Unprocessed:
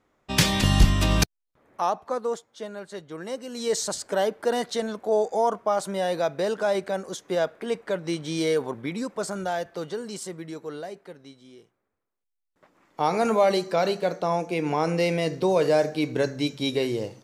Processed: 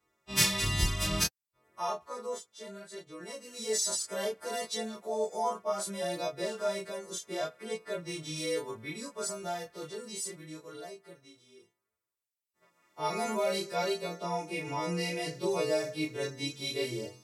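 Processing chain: frequency quantiser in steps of 2 st; chorus 0.64 Hz, depth 5.9 ms; notch comb 260 Hz; gain -5 dB

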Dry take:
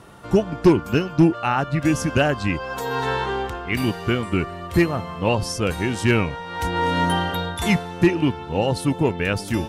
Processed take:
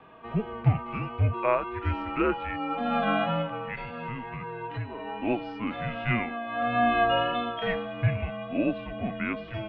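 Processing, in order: harmonic-percussive split percussive -14 dB; 3.41–5.07 compressor 3:1, threshold -26 dBFS, peak gain reduction 10 dB; mistuned SSB -230 Hz 390–3300 Hz; wow and flutter 22 cents

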